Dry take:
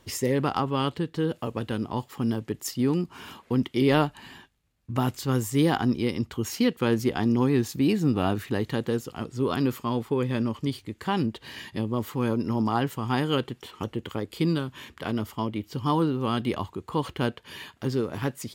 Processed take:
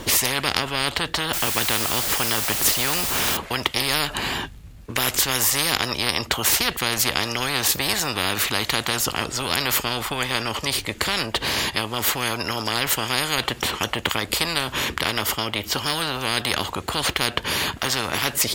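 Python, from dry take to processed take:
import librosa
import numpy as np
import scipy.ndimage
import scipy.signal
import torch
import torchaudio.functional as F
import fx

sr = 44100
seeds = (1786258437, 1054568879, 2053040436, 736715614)

y = fx.quant_dither(x, sr, seeds[0], bits=8, dither='triangular', at=(1.33, 3.37))
y = fx.low_shelf(y, sr, hz=220.0, db=12.0)
y = fx.spectral_comp(y, sr, ratio=10.0)
y = y * librosa.db_to_amplitude(5.0)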